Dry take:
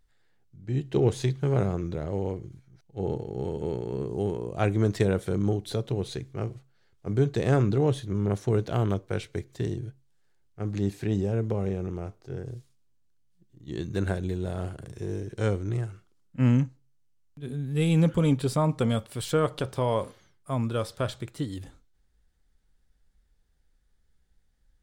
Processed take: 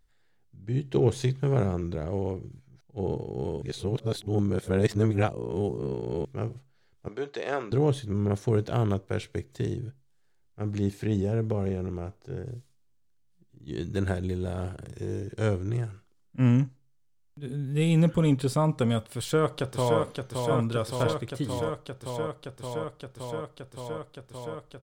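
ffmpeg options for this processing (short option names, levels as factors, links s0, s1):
-filter_complex "[0:a]asettb=1/sr,asplit=3[s0][s1][s2];[s0]atrim=end=7.084[s3];[s1]atrim=start=7.08:end=7.72,asetpts=PTS-STARTPTS,afade=t=in:d=0.004:c=qsin,afade=t=out:st=0.636:d=0.004:c=qsin,highpass=550,lowpass=5000[s4];[s2]atrim=start=7.716[s5];[s3][s4]acrossfade=d=0.004:c1=hsin:c2=qsin[s6];[s6][s5]acrossfade=d=0.004:c1=qsin:c2=hsin,asplit=2[s7][s8];[s8]afade=t=in:st=19.17:d=0.01,afade=t=out:st=19.99:d=0.01,aecho=0:1:570|1140|1710|2280|2850|3420|3990|4560|5130|5700|6270|6840:0.595662|0.506313|0.430366|0.365811|0.310939|0.264298|0.224654|0.190956|0.162312|0.137965|0.117271|0.09968[s9];[s7][s9]amix=inputs=2:normalize=0,asplit=3[s10][s11][s12];[s10]atrim=end=3.622[s13];[s11]atrim=start=3.618:end=6.252,asetpts=PTS-STARTPTS,areverse[s14];[s12]atrim=start=6.248[s15];[s13][s14]acrossfade=d=0.004:c1=hsin:c2=hsin[s16];[s16][s15]acrossfade=d=0.004:c1=hsin:c2=hsin"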